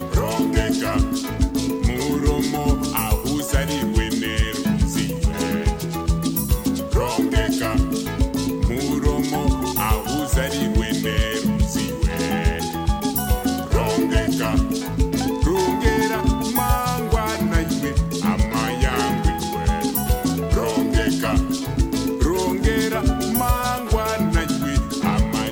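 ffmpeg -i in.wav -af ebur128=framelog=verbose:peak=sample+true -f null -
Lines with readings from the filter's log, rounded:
Integrated loudness:
  I:         -21.3 LUFS
  Threshold: -31.3 LUFS
Loudness range:
  LRA:         1.2 LU
  Threshold: -41.3 LUFS
  LRA low:   -21.8 LUFS
  LRA high:  -20.6 LUFS
Sample peak:
  Peak:       -5.1 dBFS
True peak:
  Peak:       -5.1 dBFS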